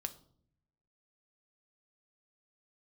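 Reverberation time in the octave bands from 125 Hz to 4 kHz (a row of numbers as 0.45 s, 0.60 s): 1.1 s, 1.0 s, 0.70 s, 0.50 s, 0.35 s, 0.40 s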